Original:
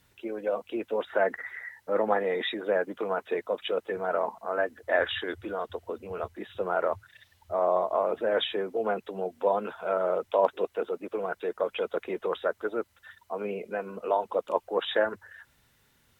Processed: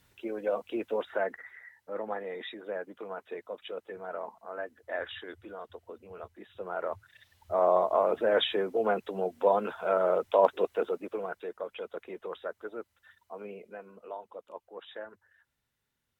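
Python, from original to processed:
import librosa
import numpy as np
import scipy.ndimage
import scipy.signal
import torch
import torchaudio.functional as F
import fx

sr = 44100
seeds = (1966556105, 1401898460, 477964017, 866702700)

y = fx.gain(x, sr, db=fx.line((0.91, -1.0), (1.53, -10.0), (6.5, -10.0), (7.61, 1.0), (10.86, 1.0), (11.62, -9.0), (13.41, -9.0), (14.42, -17.0)))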